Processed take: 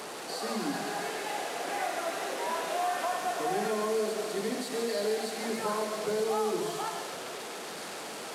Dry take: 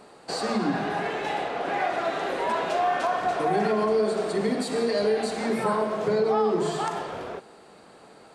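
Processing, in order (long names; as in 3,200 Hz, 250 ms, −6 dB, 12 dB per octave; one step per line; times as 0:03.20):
linear delta modulator 64 kbit/s, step −28 dBFS
high-pass filter 200 Hz 12 dB per octave
delay with a high-pass on its return 138 ms, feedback 83%, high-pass 2,000 Hz, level −7 dB
level −6.5 dB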